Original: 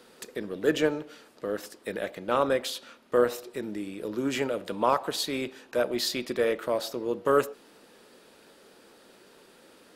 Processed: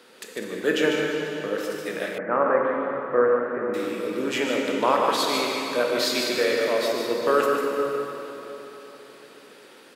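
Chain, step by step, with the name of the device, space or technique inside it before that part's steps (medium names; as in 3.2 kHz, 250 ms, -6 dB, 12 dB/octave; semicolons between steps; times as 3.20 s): stadium PA (high-pass 170 Hz 12 dB/octave; peaking EQ 2.3 kHz +5 dB 2 oct; loudspeakers at several distances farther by 51 m -6 dB, 69 m -12 dB; reverberation RT60 3.7 s, pre-delay 17 ms, DRR 0.5 dB); 2.18–3.74 s: steep low-pass 1.9 kHz 36 dB/octave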